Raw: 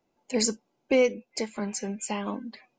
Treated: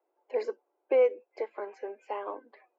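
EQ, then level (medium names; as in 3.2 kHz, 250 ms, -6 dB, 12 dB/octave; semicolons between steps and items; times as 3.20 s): steep high-pass 350 Hz 48 dB/octave; low-pass 1.4 kHz 12 dB/octave; distance through air 110 m; 0.0 dB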